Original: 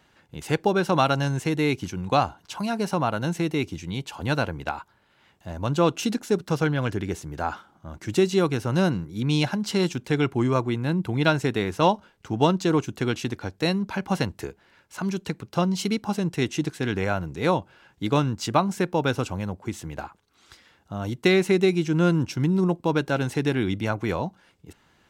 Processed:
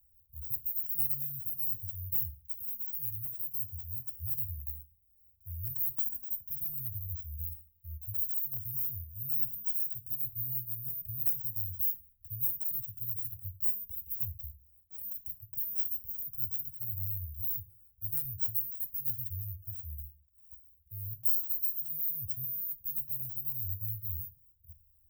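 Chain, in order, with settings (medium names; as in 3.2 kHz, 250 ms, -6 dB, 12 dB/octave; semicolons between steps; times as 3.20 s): careless resampling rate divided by 3×, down filtered, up zero stuff; inverse Chebyshev band-stop 380–8700 Hz, stop band 70 dB; peaking EQ 1 kHz +10 dB 2.5 oct; static phaser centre 430 Hz, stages 4; on a send: reverberation RT60 0.50 s, pre-delay 3 ms, DRR 7 dB; on the sum: trim +2.5 dB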